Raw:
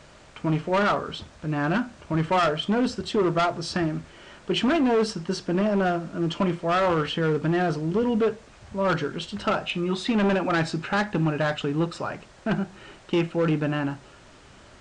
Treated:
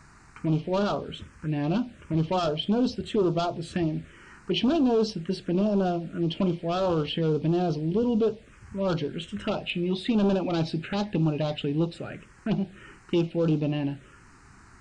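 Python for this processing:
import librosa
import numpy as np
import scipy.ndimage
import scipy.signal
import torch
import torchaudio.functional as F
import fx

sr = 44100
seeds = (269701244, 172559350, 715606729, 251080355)

y = fx.env_phaser(x, sr, low_hz=540.0, high_hz=2000.0, full_db=-19.0)
y = fx.dynamic_eq(y, sr, hz=1200.0, q=0.82, threshold_db=-41.0, ratio=4.0, max_db=-4)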